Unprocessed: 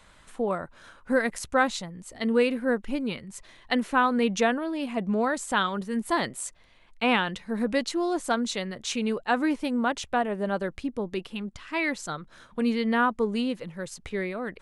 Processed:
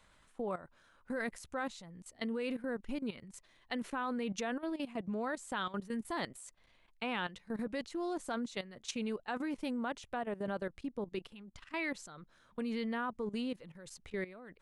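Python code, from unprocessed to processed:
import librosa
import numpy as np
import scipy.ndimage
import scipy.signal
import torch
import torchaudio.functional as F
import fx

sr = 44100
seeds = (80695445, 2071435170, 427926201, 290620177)

y = fx.level_steps(x, sr, step_db=15)
y = F.gain(torch.from_numpy(y), -6.0).numpy()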